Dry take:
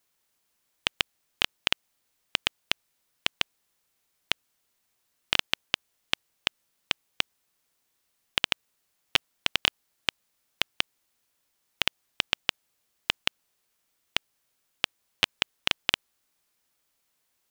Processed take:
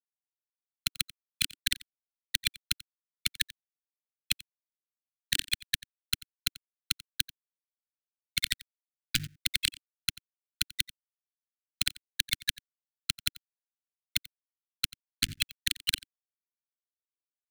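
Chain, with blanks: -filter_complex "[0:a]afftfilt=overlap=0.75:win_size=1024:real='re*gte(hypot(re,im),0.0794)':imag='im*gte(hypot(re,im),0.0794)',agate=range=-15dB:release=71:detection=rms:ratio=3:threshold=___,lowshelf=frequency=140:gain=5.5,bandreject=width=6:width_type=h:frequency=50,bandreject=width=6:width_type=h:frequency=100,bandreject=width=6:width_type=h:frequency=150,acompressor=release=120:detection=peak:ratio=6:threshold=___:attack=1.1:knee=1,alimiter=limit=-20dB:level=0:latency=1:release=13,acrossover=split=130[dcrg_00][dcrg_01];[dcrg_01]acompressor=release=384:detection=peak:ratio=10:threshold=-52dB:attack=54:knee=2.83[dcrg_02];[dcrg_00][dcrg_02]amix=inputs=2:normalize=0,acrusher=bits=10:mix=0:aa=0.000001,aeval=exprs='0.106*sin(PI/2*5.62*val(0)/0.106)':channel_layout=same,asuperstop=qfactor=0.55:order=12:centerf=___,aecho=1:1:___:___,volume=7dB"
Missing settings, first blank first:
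-59dB, -26dB, 680, 89, 0.0944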